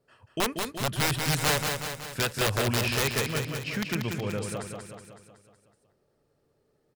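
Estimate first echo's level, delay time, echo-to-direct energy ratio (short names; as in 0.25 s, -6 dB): -5.0 dB, 0.186 s, -3.5 dB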